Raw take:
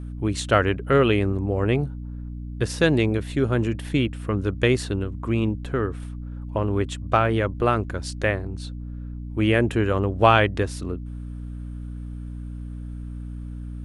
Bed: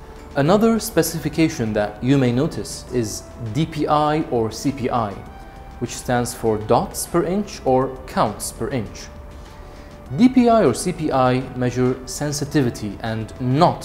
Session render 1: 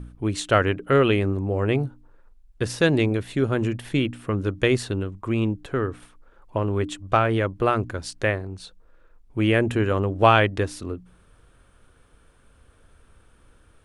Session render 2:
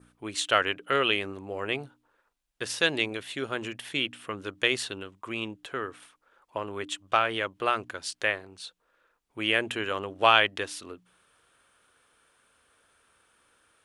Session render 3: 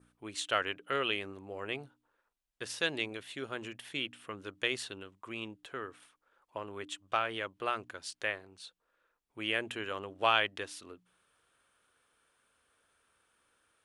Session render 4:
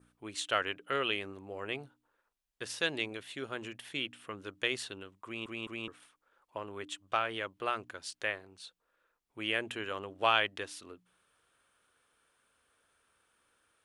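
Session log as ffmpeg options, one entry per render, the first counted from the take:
ffmpeg -i in.wav -af "bandreject=frequency=60:width_type=h:width=4,bandreject=frequency=120:width_type=h:width=4,bandreject=frequency=180:width_type=h:width=4,bandreject=frequency=240:width_type=h:width=4,bandreject=frequency=300:width_type=h:width=4" out.wav
ffmpeg -i in.wav -af "highpass=frequency=1200:poles=1,adynamicequalizer=threshold=0.00562:dfrequency=3100:dqfactor=2.4:tfrequency=3100:tqfactor=2.4:attack=5:release=100:ratio=0.375:range=3:mode=boostabove:tftype=bell" out.wav
ffmpeg -i in.wav -af "volume=-7.5dB" out.wav
ffmpeg -i in.wav -filter_complex "[0:a]asplit=4[link_01][link_02][link_03][link_04];[link_01]atrim=end=5.462[link_05];[link_02]atrim=start=5.248:end=5.462[link_06];[link_03]atrim=start=5.248:end=5.462[link_07];[link_04]atrim=start=5.878[link_08];[link_05][link_06]acrossfade=duration=0.004:curve1=hsin:curve2=hsin[link_09];[link_09][link_07]acrossfade=duration=0.004:curve1=hsin:curve2=hsin[link_10];[link_10][link_08]acrossfade=duration=0.004:curve1=hsin:curve2=hsin" out.wav

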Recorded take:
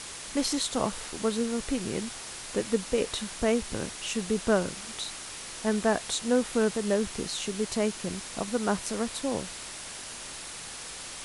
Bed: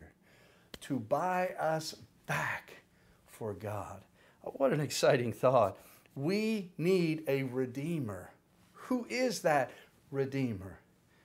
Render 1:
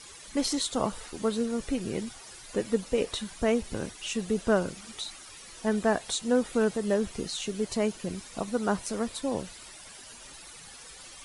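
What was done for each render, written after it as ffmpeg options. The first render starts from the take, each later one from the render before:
ffmpeg -i in.wav -af "afftdn=noise_reduction=12:noise_floor=-41" out.wav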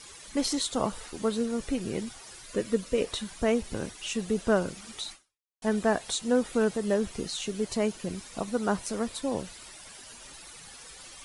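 ffmpeg -i in.wav -filter_complex "[0:a]asettb=1/sr,asplit=3[link_01][link_02][link_03];[link_01]atrim=end=2.454[link_04];[link_02]atrim=start=2.45:end=3.01,asetpts=PTS-STARTPTS,afade=type=in:duration=0.004:curve=qsin,afade=type=out:start_time=0.556:duration=0.004:curve=qsin,asuperstop=centerf=810:order=4:qfactor=3.8[link_05];[link_03]atrim=start=3.006[link_06];[link_04][link_05]acrossfade=duration=0.004:curve1=hsin:curve2=qsin[link_07];[link_07][link_06]acrossfade=duration=0.004:curve1=qsin:curve2=hsin,asplit=2[link_08][link_09];[link_08]atrim=end=5.62,asetpts=PTS-STARTPTS,afade=type=out:start_time=5.12:duration=0.5:curve=exp[link_10];[link_09]atrim=start=5.62,asetpts=PTS-STARTPTS,afade=type=in:duration=0.004:curve=hsin[link_11];[link_10][link_11]concat=n=2:v=0:a=1" out.wav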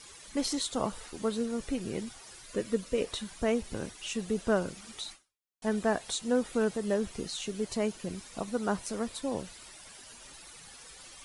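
ffmpeg -i in.wav -af "volume=-3dB" out.wav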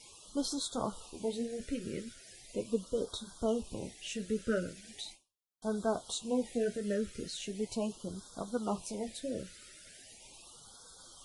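ffmpeg -i in.wav -af "flanger=delay=8:depth=8.5:regen=-42:speed=0.38:shape=triangular,afftfilt=real='re*(1-between(b*sr/1024,870*pow(2300/870,0.5+0.5*sin(2*PI*0.39*pts/sr))/1.41,870*pow(2300/870,0.5+0.5*sin(2*PI*0.39*pts/sr))*1.41))':imag='im*(1-between(b*sr/1024,870*pow(2300/870,0.5+0.5*sin(2*PI*0.39*pts/sr))/1.41,870*pow(2300/870,0.5+0.5*sin(2*PI*0.39*pts/sr))*1.41))':win_size=1024:overlap=0.75" out.wav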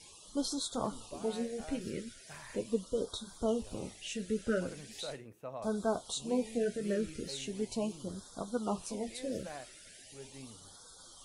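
ffmpeg -i in.wav -i bed.wav -filter_complex "[1:a]volume=-17dB[link_01];[0:a][link_01]amix=inputs=2:normalize=0" out.wav

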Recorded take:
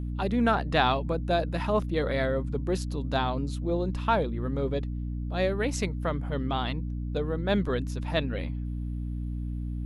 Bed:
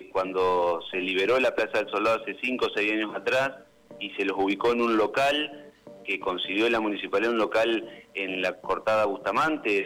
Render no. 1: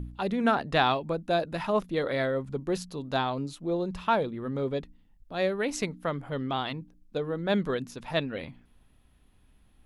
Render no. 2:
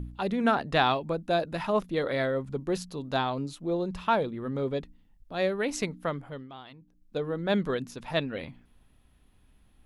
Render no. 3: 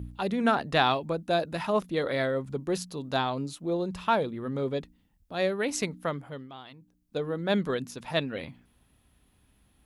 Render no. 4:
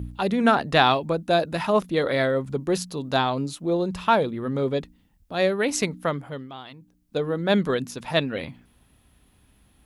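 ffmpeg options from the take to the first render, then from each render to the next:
ffmpeg -i in.wav -af "bandreject=frequency=60:width_type=h:width=4,bandreject=frequency=120:width_type=h:width=4,bandreject=frequency=180:width_type=h:width=4,bandreject=frequency=240:width_type=h:width=4,bandreject=frequency=300:width_type=h:width=4" out.wav
ffmpeg -i in.wav -filter_complex "[0:a]asplit=3[link_01][link_02][link_03];[link_01]atrim=end=6.48,asetpts=PTS-STARTPTS,afade=type=out:start_time=6.07:duration=0.41:silence=0.177828[link_04];[link_02]atrim=start=6.48:end=6.79,asetpts=PTS-STARTPTS,volume=-15dB[link_05];[link_03]atrim=start=6.79,asetpts=PTS-STARTPTS,afade=type=in:duration=0.41:silence=0.177828[link_06];[link_04][link_05][link_06]concat=n=3:v=0:a=1" out.wav
ffmpeg -i in.wav -af "highpass=50,highshelf=frequency=5900:gain=6" out.wav
ffmpeg -i in.wav -af "volume=5.5dB" out.wav

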